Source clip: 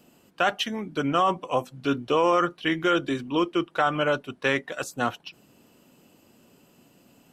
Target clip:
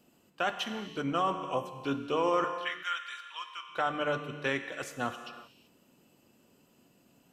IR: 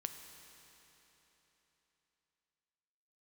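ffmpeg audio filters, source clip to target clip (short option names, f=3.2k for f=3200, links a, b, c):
-filter_complex "[0:a]asettb=1/sr,asplit=3[a][b][c];[a]atrim=end=2.444[d];[b]atrim=start=2.44:end=3.69,asetpts=PTS-STARTPTS,afade=t=in:d=0.004:c=qsin,afade=t=out:st=1.246:d=0.004:c=qsin,highpass=f=1.1k:w=0.5412,highpass=f=1.1k:w=1.3066[e];[c]atrim=start=3.686[f];[d][e]acrossfade=d=0.004:c1=hsin:c2=qsin[g];[g][f]acrossfade=d=0.004:c1=qsin:c2=hsin[h];[1:a]atrim=start_sample=2205,afade=t=out:st=0.44:d=0.01,atrim=end_sample=19845[i];[h][i]afir=irnorm=-1:irlink=0,volume=-5dB"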